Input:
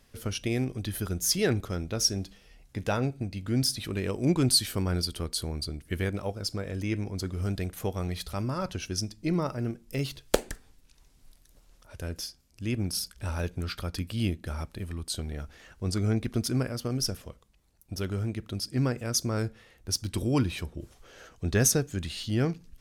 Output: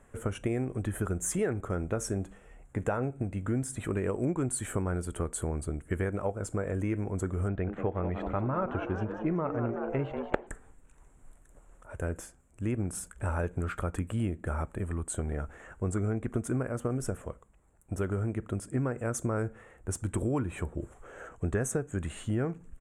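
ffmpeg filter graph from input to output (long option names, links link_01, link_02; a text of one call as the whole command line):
ffmpeg -i in.wav -filter_complex "[0:a]asettb=1/sr,asplit=3[link_01][link_02][link_03];[link_01]atrim=end=7.484[link_04];[link_02]atrim=start=7.48:end=10.47,asetpts=PTS-STARTPTS,afade=type=in:duration=0.004:curve=qsin,afade=type=out:start_time=2.986:duration=0.004:curve=qsin,lowpass=frequency=3600:width=0.5412,lowpass=frequency=3600:width=1.3066,asplit=8[link_05][link_06][link_07][link_08][link_09][link_10][link_11][link_12];[link_06]adelay=188,afreqshift=110,volume=-10.5dB[link_13];[link_07]adelay=376,afreqshift=220,volume=-15.2dB[link_14];[link_08]adelay=564,afreqshift=330,volume=-20dB[link_15];[link_09]adelay=752,afreqshift=440,volume=-24.7dB[link_16];[link_10]adelay=940,afreqshift=550,volume=-29.4dB[link_17];[link_11]adelay=1128,afreqshift=660,volume=-34.2dB[link_18];[link_12]adelay=1316,afreqshift=770,volume=-38.9dB[link_19];[link_05][link_13][link_14][link_15][link_16][link_17][link_18][link_19]amix=inputs=8:normalize=0,atrim=end_sample=131859[link_20];[link_03]atrim=start=10.466[link_21];[link_04][link_20]acrossfade=duration=0.004:curve1=hsin:curve2=qsin[link_22];[link_22][link_21]acrossfade=duration=0.004:curve1=qsin:curve2=hsin,firequalizer=gain_entry='entry(240,0);entry(420,4);entry(1400,4);entry(4800,-30);entry(7500,3);entry(13000,-18)':delay=0.05:min_phase=1,acompressor=threshold=-29dB:ratio=6,volume=2.5dB" out.wav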